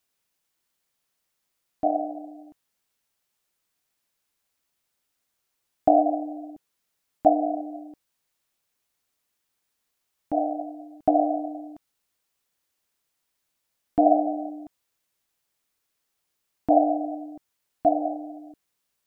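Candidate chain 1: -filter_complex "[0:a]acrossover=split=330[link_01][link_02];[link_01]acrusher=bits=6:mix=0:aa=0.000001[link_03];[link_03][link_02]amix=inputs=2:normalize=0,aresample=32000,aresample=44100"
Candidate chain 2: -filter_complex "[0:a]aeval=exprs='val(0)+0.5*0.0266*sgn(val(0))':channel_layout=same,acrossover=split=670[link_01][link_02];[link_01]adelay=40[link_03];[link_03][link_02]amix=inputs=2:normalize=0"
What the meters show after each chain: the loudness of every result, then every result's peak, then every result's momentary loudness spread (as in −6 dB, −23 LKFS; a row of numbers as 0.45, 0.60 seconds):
−25.0, −29.5 LKFS; −4.0, −8.0 dBFS; 18, 12 LU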